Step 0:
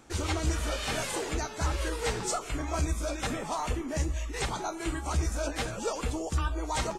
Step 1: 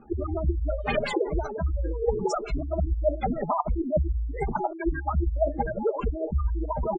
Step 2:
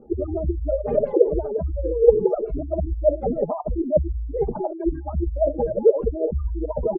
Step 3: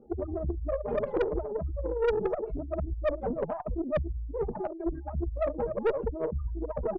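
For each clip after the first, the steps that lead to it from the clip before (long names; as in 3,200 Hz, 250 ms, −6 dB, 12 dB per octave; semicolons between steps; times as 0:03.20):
gate on every frequency bin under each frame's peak −10 dB strong; comb filter 4.9 ms, depth 67%; auto-filter low-pass sine 5.7 Hz 310–4,800 Hz; level +5 dB
low-pass with resonance 510 Hz, resonance Q 4.9
tube saturation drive 16 dB, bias 0.5; level −5 dB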